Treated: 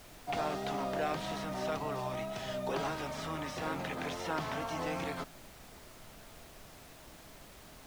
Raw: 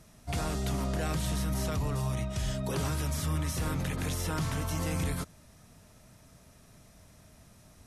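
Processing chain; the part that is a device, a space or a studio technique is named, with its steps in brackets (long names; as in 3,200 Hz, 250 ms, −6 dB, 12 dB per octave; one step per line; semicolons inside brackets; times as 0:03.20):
horn gramophone (band-pass filter 280–3,800 Hz; parametric band 750 Hz +6.5 dB 0.55 octaves; tape wow and flutter; pink noise bed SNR 15 dB)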